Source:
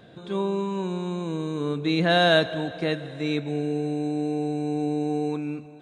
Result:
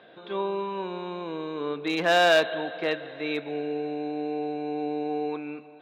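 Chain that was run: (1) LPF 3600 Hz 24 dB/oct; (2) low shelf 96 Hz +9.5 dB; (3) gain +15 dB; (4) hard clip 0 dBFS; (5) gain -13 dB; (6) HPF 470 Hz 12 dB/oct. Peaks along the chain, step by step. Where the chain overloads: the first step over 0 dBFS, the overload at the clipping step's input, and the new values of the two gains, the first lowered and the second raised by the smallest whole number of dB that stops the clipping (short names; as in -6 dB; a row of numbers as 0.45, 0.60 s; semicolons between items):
-7.5, -8.5, +6.5, 0.0, -13.0, -8.0 dBFS; step 3, 6.5 dB; step 3 +8 dB, step 5 -6 dB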